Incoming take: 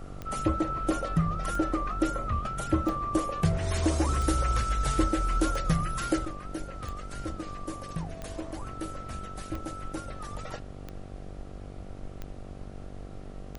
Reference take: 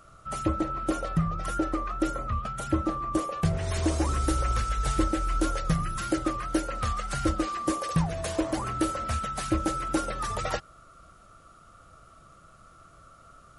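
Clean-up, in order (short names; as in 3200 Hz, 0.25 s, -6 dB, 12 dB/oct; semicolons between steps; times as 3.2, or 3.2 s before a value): de-click; de-hum 48.2 Hz, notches 16; noise print and reduce 12 dB; gain correction +10.5 dB, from 6.25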